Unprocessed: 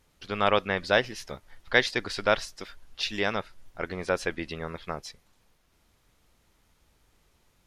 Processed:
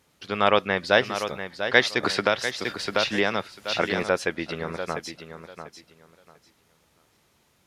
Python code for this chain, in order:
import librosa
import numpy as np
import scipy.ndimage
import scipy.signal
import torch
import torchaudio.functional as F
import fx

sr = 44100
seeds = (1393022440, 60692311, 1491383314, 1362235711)

y = scipy.signal.sosfilt(scipy.signal.butter(2, 110.0, 'highpass', fs=sr, output='sos'), x)
y = fx.echo_feedback(y, sr, ms=694, feedback_pct=21, wet_db=-9.5)
y = fx.band_squash(y, sr, depth_pct=100, at=(2.03, 4.03))
y = F.gain(torch.from_numpy(y), 3.5).numpy()